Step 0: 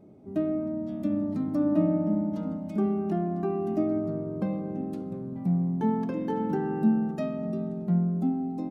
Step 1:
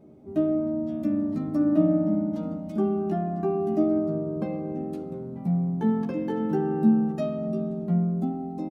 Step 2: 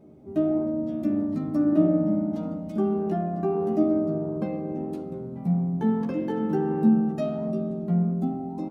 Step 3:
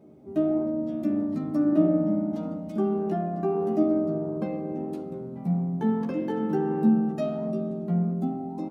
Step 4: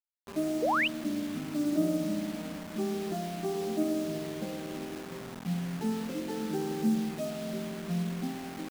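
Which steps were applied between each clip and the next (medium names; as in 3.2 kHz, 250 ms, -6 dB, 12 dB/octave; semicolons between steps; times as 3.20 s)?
doubling 13 ms -4 dB
flange 1.6 Hz, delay 7.6 ms, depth 9.9 ms, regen +88%; trim +5 dB
high-pass 130 Hz 6 dB/octave
band-stop 1.1 kHz, Q 7.8; bit crusher 6-bit; painted sound rise, 0.62–0.88 s, 430–3200 Hz -20 dBFS; trim -7 dB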